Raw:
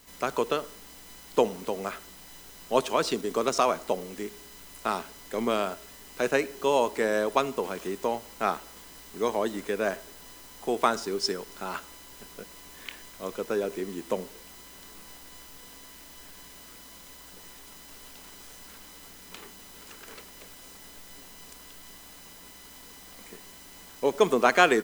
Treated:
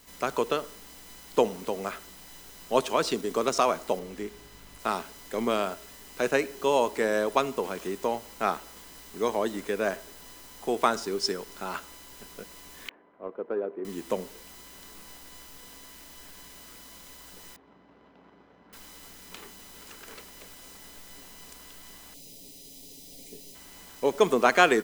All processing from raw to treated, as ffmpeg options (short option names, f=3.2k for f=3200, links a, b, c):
-filter_complex "[0:a]asettb=1/sr,asplit=3[a][b][c];[a]atrim=end=3.994[d];[b]atrim=start=3.99:end=4.8,asetpts=PTS-STARTPTS,afade=t=in:d=0.004:c=qsin,afade=t=out:st=0.806:d=0.004:c=qsin,highshelf=f=4.6k:g=-7,aeval=exprs='val(0)+0.00178*(sin(2*PI*50*n/s)+sin(2*PI*2*50*n/s)/2+sin(2*PI*3*50*n/s)/3+sin(2*PI*4*50*n/s)/4+sin(2*PI*5*50*n/s)/5)':c=same[e];[c]atrim=start=4.796[f];[d][e]acrossfade=d=0.004:c1=hsin:c2=qsin[g];[g][f]acrossfade=d=0.004:c1=qsin:c2=hsin,asettb=1/sr,asplit=3[h][i][j];[h]atrim=end=12.894[k];[i]atrim=start=12.89:end=13.85,asetpts=PTS-STARTPTS,afade=t=in:d=0.004:c=qsin,afade=t=out:st=0.956:d=0.004:c=qsin,highpass=300,lowpass=2.3k,adynamicsmooth=sensitivity=0.5:basefreq=960[l];[j]atrim=start=13.846[m];[k][l]acrossfade=d=0.004:c1=hsin:c2=qsin[n];[n][m]acrossfade=d=0.004:c1=qsin:c2=hsin,asettb=1/sr,asplit=3[o][p][q];[o]atrim=end=17.564[r];[p]atrim=start=17.56:end=18.73,asetpts=PTS-STARTPTS,afade=t=in:d=0.004:c=qsin,afade=t=out:st=1.166:d=0.004:c=qsin,adynamicsmooth=sensitivity=4.5:basefreq=980,highpass=120,lowpass=5.4k[s];[q]atrim=start=18.726[t];[r][s]acrossfade=d=0.004:c1=hsin:c2=qsin[u];[u][t]acrossfade=d=0.004:c1=qsin:c2=hsin,asettb=1/sr,asplit=3[v][w][x];[v]atrim=end=22.144[y];[w]atrim=start=22.14:end=23.55,asetpts=PTS-STARTPTS,afade=t=in:d=0.004:c=qsin,afade=t=out:st=1.406:d=0.004:c=qsin,asuperstop=centerf=1300:order=4:qfactor=0.54,aecho=1:1:7.2:0.65,atrim=end_sample=62181[z];[x]atrim=start=23.546[aa];[y][z]acrossfade=d=0.004:c1=hsin:c2=qsin[ab];[ab][aa]acrossfade=d=0.004:c1=qsin:c2=hsin"